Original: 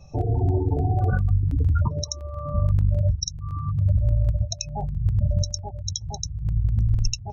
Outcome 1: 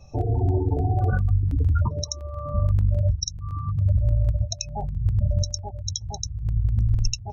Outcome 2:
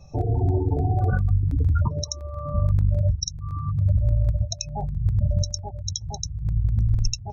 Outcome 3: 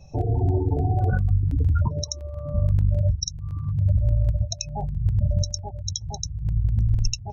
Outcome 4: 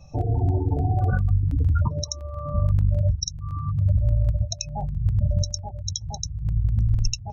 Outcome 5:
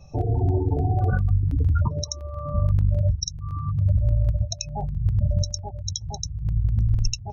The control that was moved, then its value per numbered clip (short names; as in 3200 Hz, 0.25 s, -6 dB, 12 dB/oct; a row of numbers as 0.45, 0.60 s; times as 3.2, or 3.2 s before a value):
notch, frequency: 160, 2900, 1200, 400, 7700 Hz